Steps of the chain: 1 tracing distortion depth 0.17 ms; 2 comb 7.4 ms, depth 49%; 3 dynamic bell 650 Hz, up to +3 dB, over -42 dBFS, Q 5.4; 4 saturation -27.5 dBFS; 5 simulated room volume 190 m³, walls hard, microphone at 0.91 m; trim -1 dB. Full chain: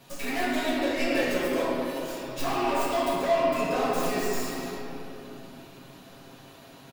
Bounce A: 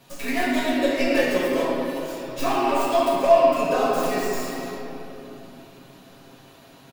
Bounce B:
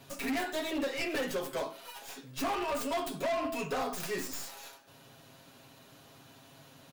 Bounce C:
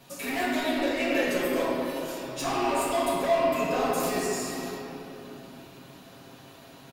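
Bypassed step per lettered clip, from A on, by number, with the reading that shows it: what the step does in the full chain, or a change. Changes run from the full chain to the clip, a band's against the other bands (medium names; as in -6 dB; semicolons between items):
4, distortion -7 dB; 5, echo-to-direct 6.0 dB to none; 1, 8 kHz band +3.0 dB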